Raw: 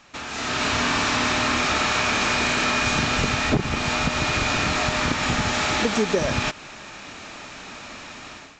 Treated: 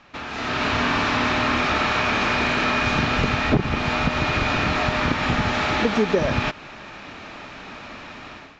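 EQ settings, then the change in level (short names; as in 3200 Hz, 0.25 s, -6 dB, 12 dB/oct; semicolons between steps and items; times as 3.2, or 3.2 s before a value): air absorption 190 m; +2.5 dB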